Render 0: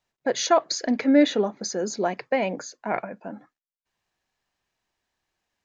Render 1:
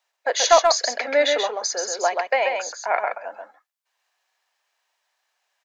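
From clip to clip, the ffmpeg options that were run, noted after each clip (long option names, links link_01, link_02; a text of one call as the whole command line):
ffmpeg -i in.wav -af "highpass=frequency=590:width=0.5412,highpass=frequency=590:width=1.3066,aeval=exprs='clip(val(0),-1,0.2)':channel_layout=same,aecho=1:1:132:0.596,volume=6dB" out.wav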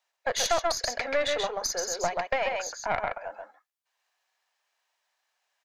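ffmpeg -i in.wav -af "aeval=exprs='(tanh(3.55*val(0)+0.7)-tanh(0.7))/3.55':channel_layout=same,acompressor=threshold=-24dB:ratio=2.5" out.wav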